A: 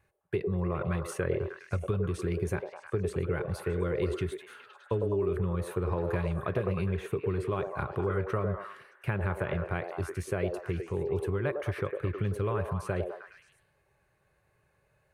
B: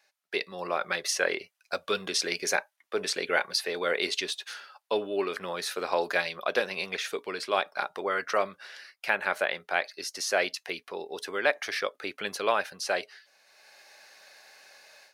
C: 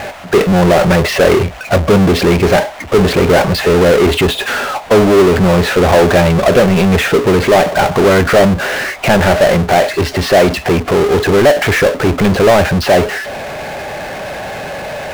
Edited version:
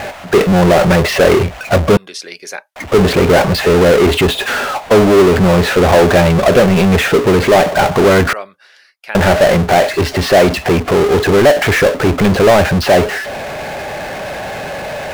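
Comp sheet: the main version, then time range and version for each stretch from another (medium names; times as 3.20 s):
C
1.97–2.76 s: from B
8.33–9.15 s: from B
not used: A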